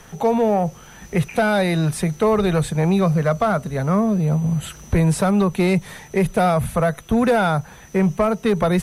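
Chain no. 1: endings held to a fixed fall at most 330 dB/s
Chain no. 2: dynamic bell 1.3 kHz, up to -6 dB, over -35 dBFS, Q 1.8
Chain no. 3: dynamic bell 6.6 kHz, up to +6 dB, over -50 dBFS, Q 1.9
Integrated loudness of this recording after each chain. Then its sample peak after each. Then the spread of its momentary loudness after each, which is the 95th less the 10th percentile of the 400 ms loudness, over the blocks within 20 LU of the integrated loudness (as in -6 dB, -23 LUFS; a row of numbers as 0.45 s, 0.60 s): -20.0 LUFS, -20.0 LUFS, -19.5 LUFS; -10.0 dBFS, -10.0 dBFS, -10.0 dBFS; 6 LU, 5 LU, 6 LU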